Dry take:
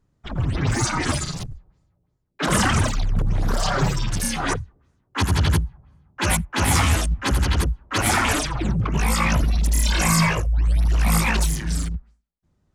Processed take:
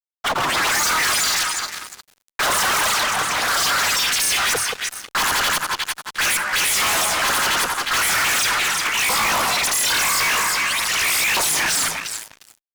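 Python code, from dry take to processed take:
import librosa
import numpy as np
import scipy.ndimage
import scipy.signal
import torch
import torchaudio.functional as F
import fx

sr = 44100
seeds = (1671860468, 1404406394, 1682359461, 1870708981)

y = fx.filter_lfo_highpass(x, sr, shape='saw_up', hz=0.44, low_hz=750.0, high_hz=2500.0, q=1.1)
y = fx.echo_alternate(y, sr, ms=177, hz=1500.0, feedback_pct=57, wet_db=-13.5)
y = fx.fuzz(y, sr, gain_db=45.0, gate_db=-55.0)
y = y * librosa.db_to_amplitude(-5.0)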